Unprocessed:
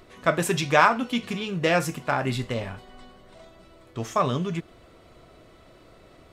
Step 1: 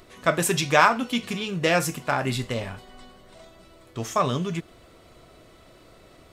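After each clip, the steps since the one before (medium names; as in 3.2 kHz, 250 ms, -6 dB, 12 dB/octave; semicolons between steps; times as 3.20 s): treble shelf 4.5 kHz +7 dB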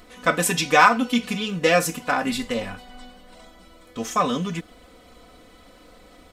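comb 4 ms, depth 88%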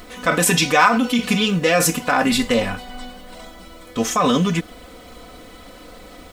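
in parallel at +1 dB: compressor with a negative ratio -24 dBFS, ratio -0.5; on the sum: bit crusher 9-bit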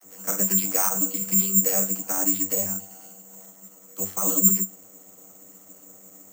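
vocoder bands 32, saw 96.6 Hz; careless resampling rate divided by 6×, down filtered, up zero stuff; trim -12 dB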